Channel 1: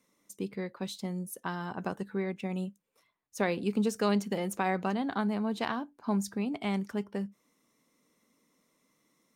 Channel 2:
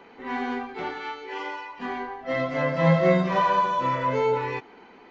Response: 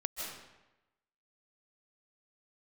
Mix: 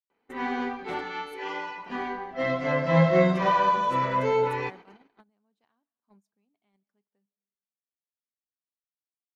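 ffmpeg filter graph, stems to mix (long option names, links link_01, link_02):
-filter_complex "[0:a]highpass=frequency=160:poles=1,volume=-18dB,asplit=2[link_01][link_02];[link_02]volume=-22dB[link_03];[1:a]adelay=100,volume=-0.5dB[link_04];[2:a]atrim=start_sample=2205[link_05];[link_03][link_05]afir=irnorm=-1:irlink=0[link_06];[link_01][link_04][link_06]amix=inputs=3:normalize=0,agate=range=-25dB:threshold=-44dB:ratio=16:detection=peak"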